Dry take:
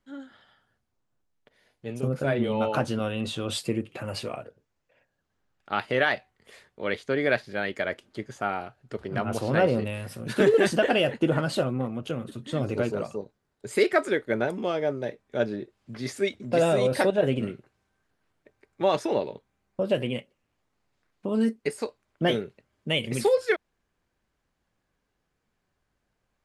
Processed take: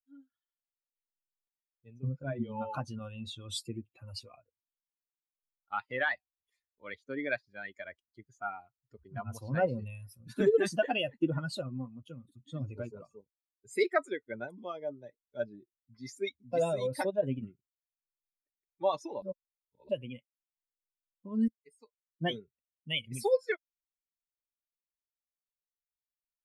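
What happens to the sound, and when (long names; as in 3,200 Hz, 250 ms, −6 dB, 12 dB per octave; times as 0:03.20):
0:01.96–0:02.69: high-frequency loss of the air 120 metres
0:19.22–0:19.89: reverse
0:21.48–0:22.29: fade in, from −20 dB
whole clip: spectral dynamics exaggerated over time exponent 2; level −2.5 dB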